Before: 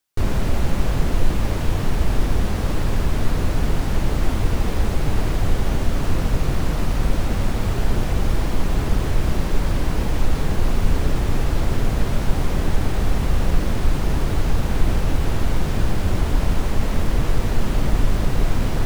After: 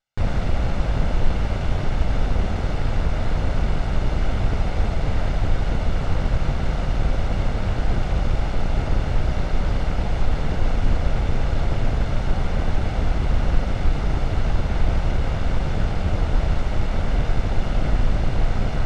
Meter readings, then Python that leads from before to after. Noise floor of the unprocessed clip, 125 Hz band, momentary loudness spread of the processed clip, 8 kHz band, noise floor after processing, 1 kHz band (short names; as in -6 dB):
-23 dBFS, -1.0 dB, 2 LU, -9.5 dB, -25 dBFS, -0.5 dB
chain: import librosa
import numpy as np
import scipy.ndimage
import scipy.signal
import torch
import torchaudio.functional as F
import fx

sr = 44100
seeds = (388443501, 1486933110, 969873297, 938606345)

y = fx.lower_of_two(x, sr, delay_ms=1.4)
y = fx.air_absorb(y, sr, metres=110.0)